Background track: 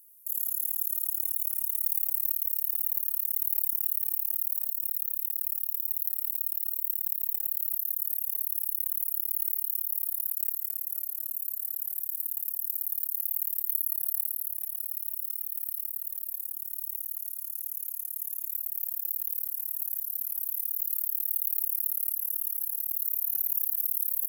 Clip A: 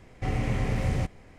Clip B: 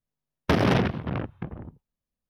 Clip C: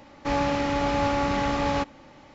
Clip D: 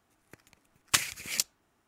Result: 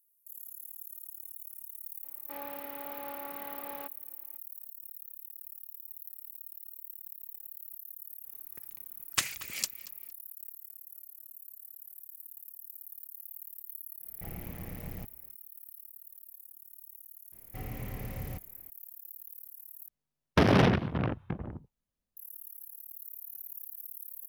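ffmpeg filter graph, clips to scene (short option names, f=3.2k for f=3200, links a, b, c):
-filter_complex "[1:a]asplit=2[a][b];[0:a]volume=-15.5dB[c];[3:a]highpass=350,lowpass=3.3k[d];[4:a]asplit=2[e][f];[f]adelay=231,lowpass=f=4.7k:p=1,volume=-16dB,asplit=2[g][h];[h]adelay=231,lowpass=f=4.7k:p=1,volume=0.34,asplit=2[i][j];[j]adelay=231,lowpass=f=4.7k:p=1,volume=0.34[k];[e][g][i][k]amix=inputs=4:normalize=0[l];[a]aeval=exprs='val(0)*sin(2*PI*61*n/s)':c=same[m];[c]asplit=2[n][o];[n]atrim=end=19.884[p];[2:a]atrim=end=2.29,asetpts=PTS-STARTPTS,volume=-1dB[q];[o]atrim=start=22.166[r];[d]atrim=end=2.34,asetpts=PTS-STARTPTS,volume=-17dB,afade=t=in:d=0.004:c=hsin,afade=t=out:st=2.336:d=0.004:c=hsin,adelay=2040[s];[l]atrim=end=1.87,asetpts=PTS-STARTPTS,volume=-4dB,afade=t=in:d=0.004:c=hsin,afade=t=out:st=1.866:d=0.004:c=hsin,adelay=8240[t];[m]atrim=end=1.38,asetpts=PTS-STARTPTS,volume=-12.5dB,afade=t=in:d=0.1,afade=t=out:st=1.28:d=0.1,adelay=13990[u];[b]atrim=end=1.38,asetpts=PTS-STARTPTS,volume=-12.5dB,afade=t=in:d=0.004:c=hsin,afade=t=out:st=1.376:d=0.004:c=hsin,adelay=763812S[v];[p][q]acrossfade=d=0.004:c1=hsin:c2=hsin[w];[w][r]acrossfade=d=0.004:c1=hsin:c2=hsin[x];[x][s][t][u][v]amix=inputs=5:normalize=0"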